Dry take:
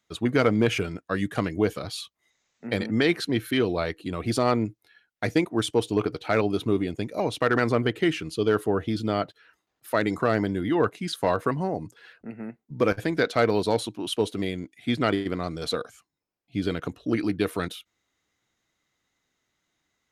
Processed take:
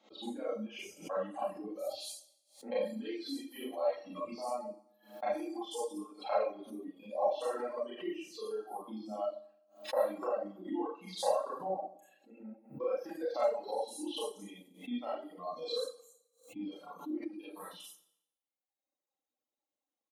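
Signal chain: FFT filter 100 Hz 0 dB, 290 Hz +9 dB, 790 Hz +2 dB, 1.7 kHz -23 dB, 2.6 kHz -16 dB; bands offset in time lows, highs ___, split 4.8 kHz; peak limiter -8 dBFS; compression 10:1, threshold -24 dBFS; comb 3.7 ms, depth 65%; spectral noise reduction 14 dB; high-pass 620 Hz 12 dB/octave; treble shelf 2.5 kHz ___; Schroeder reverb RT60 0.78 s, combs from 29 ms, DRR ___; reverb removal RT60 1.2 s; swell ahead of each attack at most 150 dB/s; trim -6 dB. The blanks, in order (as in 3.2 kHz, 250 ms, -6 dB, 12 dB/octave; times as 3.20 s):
90 ms, +10.5 dB, -9 dB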